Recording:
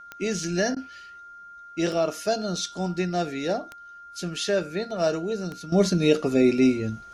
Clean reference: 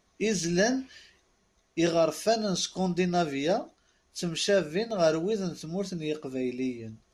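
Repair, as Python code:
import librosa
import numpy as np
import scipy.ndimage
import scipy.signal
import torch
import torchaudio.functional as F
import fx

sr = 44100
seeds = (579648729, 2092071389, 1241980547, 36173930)

y = fx.fix_declick_ar(x, sr, threshold=10.0)
y = fx.notch(y, sr, hz=1400.0, q=30.0)
y = fx.fix_interpolate(y, sr, at_s=(0.75,), length_ms=13.0)
y = fx.gain(y, sr, db=fx.steps((0.0, 0.0), (5.72, -12.0)))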